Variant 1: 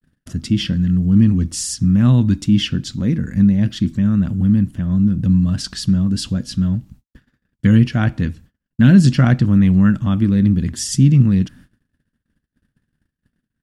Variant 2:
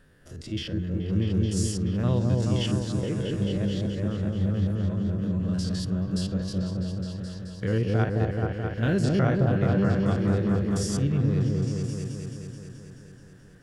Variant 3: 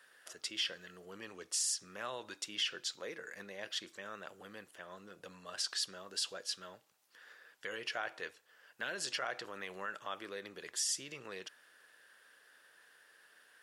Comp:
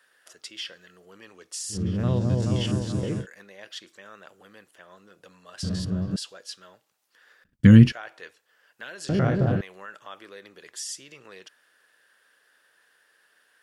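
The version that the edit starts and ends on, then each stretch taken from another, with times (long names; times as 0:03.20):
3
0:01.74–0:03.22: punch in from 2, crossfade 0.10 s
0:05.63–0:06.16: punch in from 2
0:07.44–0:07.92: punch in from 1
0:09.09–0:09.61: punch in from 2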